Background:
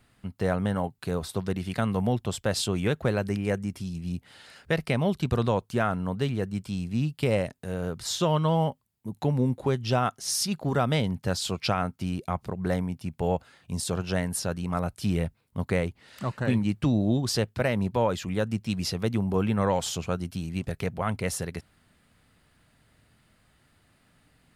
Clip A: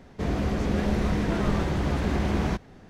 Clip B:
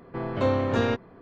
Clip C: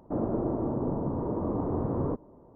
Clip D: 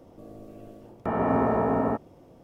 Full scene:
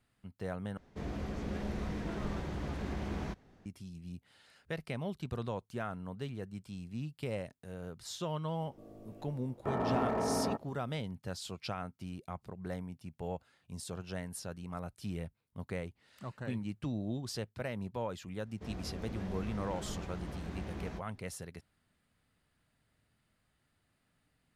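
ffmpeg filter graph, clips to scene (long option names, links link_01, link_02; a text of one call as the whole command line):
ffmpeg -i bed.wav -i cue0.wav -i cue1.wav -i cue2.wav -i cue3.wav -filter_complex "[1:a]asplit=2[link_01][link_02];[0:a]volume=-13dB[link_03];[4:a]asoftclip=type=hard:threshold=-19dB[link_04];[link_02]asplit=2[link_05][link_06];[link_06]adelay=16,volume=-10.5dB[link_07];[link_05][link_07]amix=inputs=2:normalize=0[link_08];[link_03]asplit=2[link_09][link_10];[link_09]atrim=end=0.774[link_11];[link_01]atrim=end=2.89,asetpts=PTS-STARTPTS,volume=-12.5dB[link_12];[link_10]atrim=start=3.656[link_13];[link_04]atrim=end=2.43,asetpts=PTS-STARTPTS,volume=-8dB,afade=type=in:duration=0.004:curve=hsin,afade=type=out:start_time=2.426:duration=0.004:curve=hsin,adelay=8600[link_14];[link_08]atrim=end=2.89,asetpts=PTS-STARTPTS,volume=-17.5dB,afade=type=in:duration=0.004:curve=hsin,afade=type=out:start_time=2.886:duration=0.004:curve=hsin,adelay=18420[link_15];[link_11][link_12]acrossfade=duration=0.004:curve1=hsin:curve2=hsin[link_16];[link_16][link_13]acrossfade=duration=0.004:curve1=hsin:curve2=hsin[link_17];[link_17][link_14][link_15]amix=inputs=3:normalize=0" out.wav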